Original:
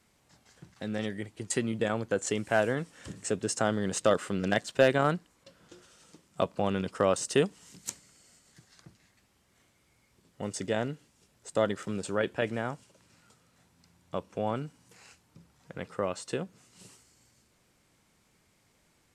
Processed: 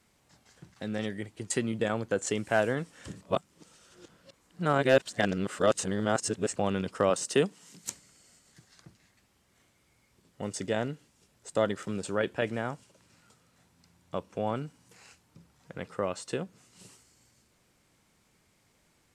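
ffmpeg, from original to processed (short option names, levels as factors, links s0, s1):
-filter_complex "[0:a]asettb=1/sr,asplit=3[s0][s1][s2];[s0]atrim=end=7.104[s3];[s1]atrim=start=7.1:end=7.84,asetpts=PTS-STARTPTS,afade=t=in:d=0.004:c=qsin,afade=t=out:st=0.736:d=0.004:c=qsin,highpass=f=130:w=0.5412,highpass=f=130:w=1.3066[s4];[s2]atrim=start=7.836[s5];[s3][s4]acrossfade=d=0.004:c1=hsin:c2=qsin[s6];[s6][s5]acrossfade=d=0.004:c1=qsin:c2=hsin,asplit=3[s7][s8][s9];[s7]atrim=end=3.212[s10];[s8]atrim=start=3.208:end=6.562,asetpts=PTS-STARTPTS,areverse[s11];[s9]atrim=start=6.558[s12];[s10][s11]acrossfade=d=0.004:c1=hsin:c2=hsin[s13];[s13][s12]acrossfade=d=0.004:c1=hsin:c2=hsin"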